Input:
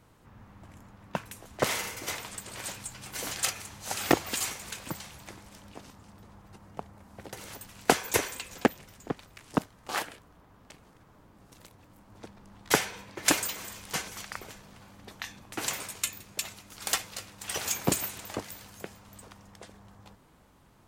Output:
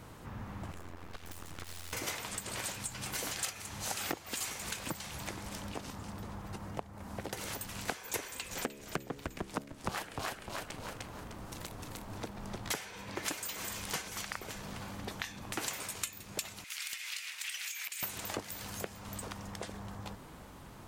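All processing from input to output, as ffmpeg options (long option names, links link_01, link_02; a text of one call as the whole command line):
ffmpeg -i in.wav -filter_complex "[0:a]asettb=1/sr,asplit=3[link_01][link_02][link_03];[link_01]atrim=end=0.714[link_04];[link_02]atrim=start=0.71:end=1.93,asetpts=PTS-STARTPTS,afade=type=in:duration=0.004:curve=qsin,afade=type=out:start_time=1.216:duration=0.004:curve=qsin,aeval=exprs='val(0)*sin(2*PI*43*n/s)':channel_layout=same,acompressor=threshold=-48dB:ratio=10:attack=3.2:release=140:knee=1:detection=peak,aeval=exprs='abs(val(0))':channel_layout=same[link_05];[link_03]atrim=start=1.926[link_06];[link_04][link_05]acrossfade=duration=0.004:curve1=hsin:curve2=qsin[link_07];[link_07][link_06]acrossfade=duration=0.004:curve1=qsin:curve2=hsin,asettb=1/sr,asplit=3[link_08][link_09][link_10];[link_08]atrim=end=8.274[link_11];[link_09]atrim=start=8.27:end=12.72,asetpts=PTS-STARTPTS,afade=type=in:duration=0.004:curve=qsin,afade=type=out:start_time=4.446:duration=0.004:curve=qsin,bandreject=frequency=70.31:width_type=h:width=4,bandreject=frequency=140.62:width_type=h:width=4,bandreject=frequency=210.93:width_type=h:width=4,bandreject=frequency=281.24:width_type=h:width=4,bandreject=frequency=351.55:width_type=h:width=4,bandreject=frequency=421.86:width_type=h:width=4,bandreject=frequency=492.17:width_type=h:width=4,bandreject=frequency=562.48:width_type=h:width=4,bandreject=frequency=632.79:width_type=h:width=4,asplit=5[link_12][link_13][link_14][link_15][link_16];[link_13]adelay=303,afreqshift=-84,volume=-3dB[link_17];[link_14]adelay=606,afreqshift=-168,volume=-12.4dB[link_18];[link_15]adelay=909,afreqshift=-252,volume=-21.7dB[link_19];[link_16]adelay=1212,afreqshift=-336,volume=-31.1dB[link_20];[link_12][link_17][link_18][link_19][link_20]amix=inputs=5:normalize=0,atrim=end_sample=196245[link_21];[link_10]atrim=start=12.716[link_22];[link_11][link_21]acrossfade=duration=0.004:curve1=hsin:curve2=qsin[link_23];[link_23][link_22]acrossfade=duration=0.004:curve1=qsin:curve2=hsin,asettb=1/sr,asplit=3[link_24][link_25][link_26];[link_24]atrim=end=16.644[link_27];[link_25]atrim=start=16.64:end=18.03,asetpts=PTS-STARTPTS,afade=type=in:duration=0.004:curve=qsin,afade=type=out:start_time=1.386:duration=0.004:curve=qsin,acompressor=threshold=-42dB:ratio=10:attack=3.2:release=140:knee=1:detection=peak,highpass=frequency=2200:width_type=q:width=2.3,asoftclip=type=hard:threshold=-32.5dB[link_28];[link_26]atrim=start=18.026[link_29];[link_27][link_28]acrossfade=duration=0.004:curve1=hsin:curve2=qsin[link_30];[link_30][link_29]acrossfade=duration=0.004:curve1=qsin:curve2=hsin,alimiter=limit=-12.5dB:level=0:latency=1:release=427,acompressor=threshold=-47dB:ratio=4,volume=9.5dB" out.wav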